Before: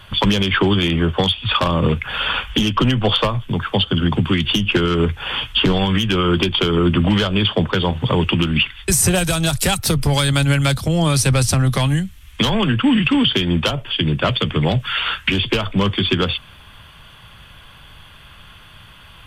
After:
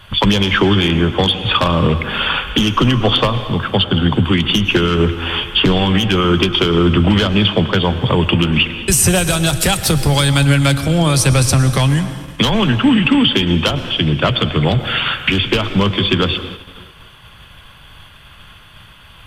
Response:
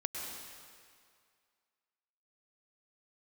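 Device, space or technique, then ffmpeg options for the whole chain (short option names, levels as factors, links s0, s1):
keyed gated reverb: -filter_complex "[0:a]asplit=3[s0][s1][s2];[1:a]atrim=start_sample=2205[s3];[s1][s3]afir=irnorm=-1:irlink=0[s4];[s2]apad=whole_len=849726[s5];[s4][s5]sidechaingate=range=0.0224:threshold=0.00891:ratio=16:detection=peak,volume=0.447[s6];[s0][s6]amix=inputs=2:normalize=0"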